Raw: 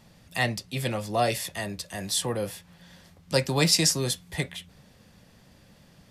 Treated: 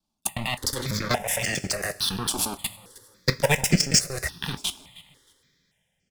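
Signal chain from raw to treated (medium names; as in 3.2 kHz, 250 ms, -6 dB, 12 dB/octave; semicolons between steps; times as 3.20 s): slices played last to first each 91 ms, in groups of 2; level held to a coarse grid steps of 22 dB; treble shelf 4.3 kHz +8 dB; waveshaping leveller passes 3; compression, threshold -20 dBFS, peak gain reduction 10.5 dB; treble shelf 10 kHz -11 dB; waveshaping leveller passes 3; vibrato 4.5 Hz 8 cents; feedback delay 313 ms, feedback 32%, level -21.5 dB; two-slope reverb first 0.23 s, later 2.7 s, from -20 dB, DRR 10.5 dB; stepped phaser 3.5 Hz 510–3800 Hz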